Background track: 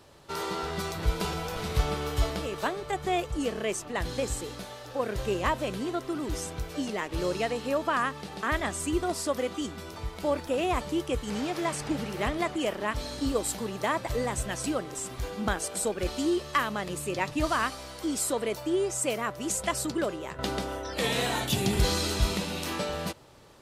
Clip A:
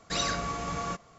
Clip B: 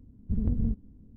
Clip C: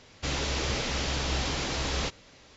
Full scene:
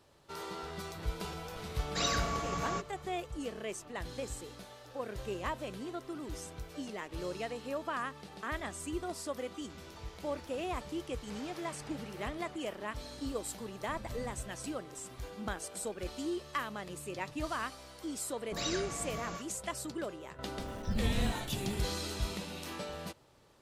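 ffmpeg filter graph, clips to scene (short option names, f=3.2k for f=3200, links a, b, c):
-filter_complex "[1:a]asplit=2[a][b];[2:a]asplit=2[c][d];[0:a]volume=-9.5dB[e];[3:a]acompressor=threshold=-39dB:ratio=6:attack=3.2:release=140:knee=1:detection=peak[f];[c]acompressor=threshold=-30dB:ratio=6:attack=3.2:release=140:knee=1:detection=peak[g];[b]acrossover=split=1100[h][i];[i]adelay=50[j];[h][j]amix=inputs=2:normalize=0[k];[d]aeval=exprs='val(0)+0.5*0.0168*sgn(val(0))':c=same[l];[a]atrim=end=1.18,asetpts=PTS-STARTPTS,volume=-2.5dB,afade=t=in:d=0.004:c=hsin,afade=t=out:st=1.176:d=0.004:c=hsin,adelay=1850[m];[f]atrim=end=2.56,asetpts=PTS-STARTPTS,volume=-15dB,afade=t=in:d=0.004:c=hsin,afade=t=out:st=2.556:d=0.004:c=hsin,adelay=9470[n];[g]atrim=end=1.16,asetpts=PTS-STARTPTS,volume=-13dB,afade=t=in:d=0.004:c=hsin,afade=t=out:st=1.156:d=0.004:c=hsin,adelay=13590[o];[k]atrim=end=1.18,asetpts=PTS-STARTPTS,volume=-6dB,afade=t=in:d=0.004:c=hsin,afade=t=out:st=1.176:d=0.004:c=hsin,adelay=18410[p];[l]atrim=end=1.16,asetpts=PTS-STARTPTS,volume=-6dB,afade=t=in:d=0.004:c=hsin,afade=t=out:st=1.156:d=0.004:c=hsin,adelay=20580[q];[e][m][n][o][p][q]amix=inputs=6:normalize=0"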